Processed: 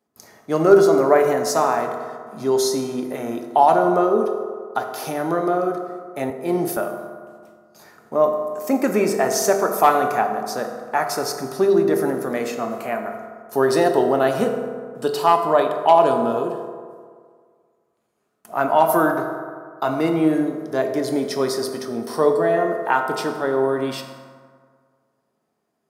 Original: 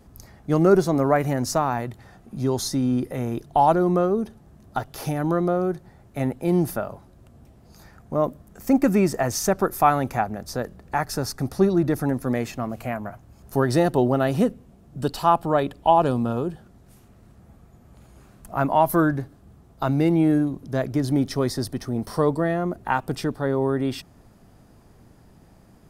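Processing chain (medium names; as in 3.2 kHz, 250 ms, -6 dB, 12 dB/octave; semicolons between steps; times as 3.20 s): gate with hold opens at -38 dBFS; high-pass 330 Hz 12 dB/octave; hard clipper -8 dBFS, distortion -31 dB; reverberation RT60 1.9 s, pre-delay 4 ms, DRR 3 dB; 6.30–6.77 s: three bands expanded up and down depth 40%; trim +3 dB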